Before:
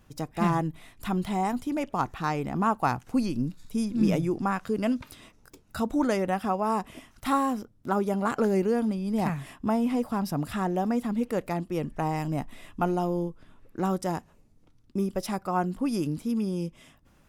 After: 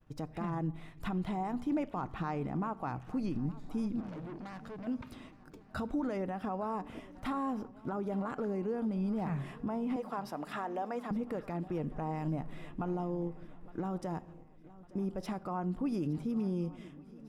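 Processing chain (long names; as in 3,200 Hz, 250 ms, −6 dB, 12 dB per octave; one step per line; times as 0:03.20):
low-pass filter 1,600 Hz 6 dB per octave
downward expander −53 dBFS
0:09.96–0:11.11: high-pass filter 530 Hz 12 dB per octave
downward compressor 2.5 to 1, threshold −30 dBFS, peak gain reduction 8 dB
brickwall limiter −27 dBFS, peak gain reduction 8.5 dB
0:04.00–0:04.87: tube saturation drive 42 dB, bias 0.4
feedback echo with a long and a short gap by turns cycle 1,153 ms, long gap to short 3 to 1, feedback 47%, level −20 dB
rectangular room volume 3,600 cubic metres, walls furnished, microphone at 0.49 metres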